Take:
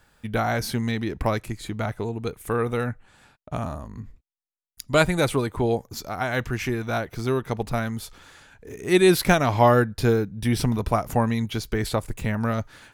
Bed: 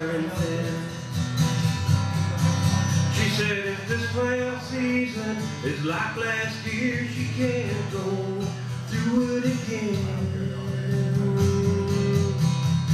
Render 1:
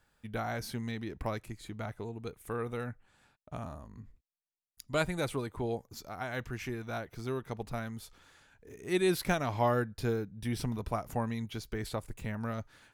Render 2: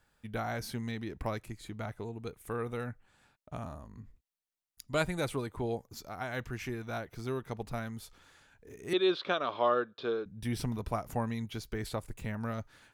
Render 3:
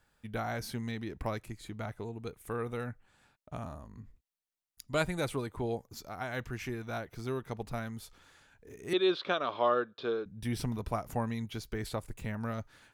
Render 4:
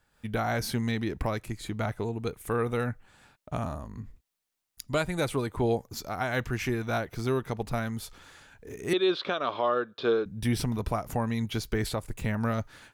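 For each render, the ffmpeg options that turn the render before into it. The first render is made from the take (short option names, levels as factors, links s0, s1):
-af "volume=0.266"
-filter_complex "[0:a]asettb=1/sr,asplit=3[s0][s1][s2];[s0]atrim=end=8.934[s3];[s1]atrim=start=8.93:end=10.26,asetpts=PTS-STARTPTS,afade=t=in:d=0.004:c=qsin,afade=t=out:st=1.326:d=0.004:c=qsin,highpass=370,equalizer=f=390:t=q:w=4:g=4,equalizer=f=550:t=q:w=4:g=4,equalizer=f=820:t=q:w=4:g=-6,equalizer=f=1200:t=q:w=4:g=8,equalizer=f=2000:t=q:w=4:g=-9,equalizer=f=3500:t=q:w=4:g=10,lowpass=f=3900:w=0.5412,lowpass=f=3900:w=1.3066[s4];[s2]atrim=start=10.256[s5];[s3][s4]acrossfade=d=0.004:c1=hsin:c2=qsin[s6];[s6][s5]acrossfade=d=0.004:c1=qsin:c2=hsin"
-af anull
-af "dynaudnorm=f=110:g=3:m=2.66,alimiter=limit=0.15:level=0:latency=1:release=329"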